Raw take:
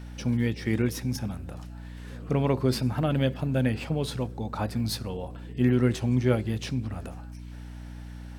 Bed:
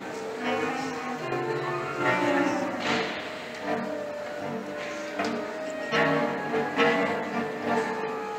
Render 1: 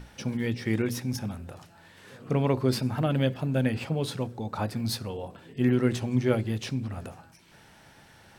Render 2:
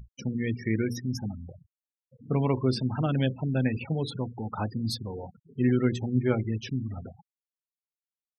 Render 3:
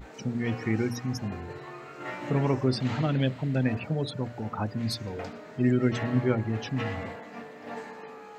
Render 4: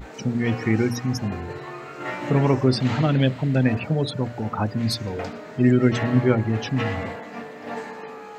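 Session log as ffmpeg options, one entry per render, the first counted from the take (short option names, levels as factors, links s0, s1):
-af "bandreject=f=60:t=h:w=6,bandreject=f=120:t=h:w=6,bandreject=f=180:t=h:w=6,bandreject=f=240:t=h:w=6,bandreject=f=300:t=h:w=6"
-af "afftfilt=real='re*gte(hypot(re,im),0.0251)':imag='im*gte(hypot(re,im),0.0251)':win_size=1024:overlap=0.75,equalizer=f=560:w=3.2:g=-5"
-filter_complex "[1:a]volume=0.237[s0];[0:a][s0]amix=inputs=2:normalize=0"
-af "volume=2.11"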